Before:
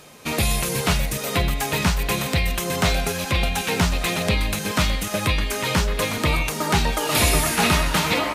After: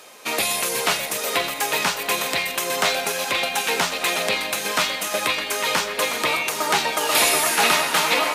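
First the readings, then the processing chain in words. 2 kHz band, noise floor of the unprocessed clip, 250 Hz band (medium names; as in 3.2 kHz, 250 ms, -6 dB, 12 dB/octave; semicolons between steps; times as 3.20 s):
+2.5 dB, -30 dBFS, -8.5 dB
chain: high-pass 450 Hz 12 dB/octave; two-band feedback delay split 1.1 kHz, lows 231 ms, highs 529 ms, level -13 dB; trim +2.5 dB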